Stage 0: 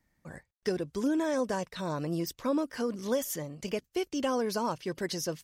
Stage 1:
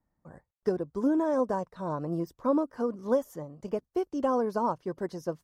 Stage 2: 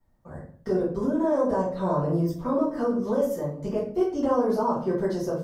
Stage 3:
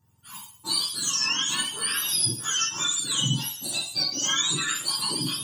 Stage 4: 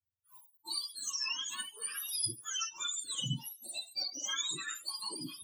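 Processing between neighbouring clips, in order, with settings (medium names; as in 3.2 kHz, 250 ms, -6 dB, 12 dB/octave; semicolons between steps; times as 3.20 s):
resonant high shelf 1.6 kHz -13 dB, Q 1.5; upward expansion 1.5:1, over -39 dBFS; trim +3.5 dB
peak limiter -26 dBFS, peak gain reduction 11 dB; simulated room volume 54 m³, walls mixed, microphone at 1.7 m
spectrum inverted on a logarithmic axis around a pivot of 1.3 kHz; graphic EQ 125/1000/2000 Hz +4/+7/-12 dB; trim +7 dB
expander on every frequency bin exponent 2; reverse; upward compressor, threshold -45 dBFS; reverse; trim -8 dB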